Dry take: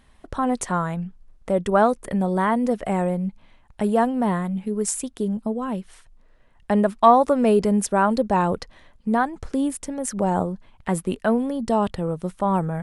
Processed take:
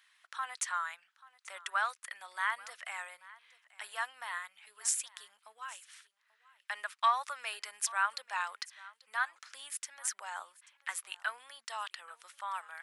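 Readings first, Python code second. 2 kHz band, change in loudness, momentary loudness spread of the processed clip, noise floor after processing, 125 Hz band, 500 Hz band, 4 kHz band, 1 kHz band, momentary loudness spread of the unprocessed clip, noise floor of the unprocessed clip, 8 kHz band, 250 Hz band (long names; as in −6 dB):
−3.0 dB, −14.5 dB, 18 LU, −77 dBFS, below −40 dB, −31.5 dB, −2.0 dB, −14.0 dB, 10 LU, −55 dBFS, −4.5 dB, below −40 dB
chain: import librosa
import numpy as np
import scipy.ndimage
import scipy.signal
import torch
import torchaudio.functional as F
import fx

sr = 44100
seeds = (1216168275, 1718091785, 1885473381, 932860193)

y = scipy.signal.sosfilt(scipy.signal.butter(4, 1400.0, 'highpass', fs=sr, output='sos'), x)
y = fx.peak_eq(y, sr, hz=9300.0, db=-4.5, octaves=0.7)
y = y + 10.0 ** (-21.0 / 20.0) * np.pad(y, (int(836 * sr / 1000.0), 0))[:len(y)]
y = y * 10.0 ** (-1.5 / 20.0)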